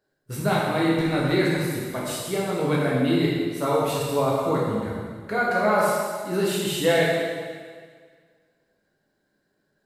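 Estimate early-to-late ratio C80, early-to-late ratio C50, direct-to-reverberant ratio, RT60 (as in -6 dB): 1.0 dB, -1.0 dB, -5.0 dB, 1.8 s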